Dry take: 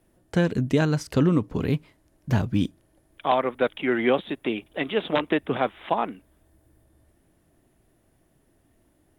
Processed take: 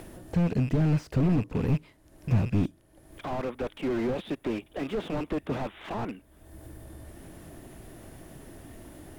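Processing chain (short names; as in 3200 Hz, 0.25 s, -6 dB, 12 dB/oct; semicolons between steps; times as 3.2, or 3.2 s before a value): rattling part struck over -36 dBFS, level -23 dBFS; upward compressor, threshold -30 dBFS; slew limiter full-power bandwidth 20 Hz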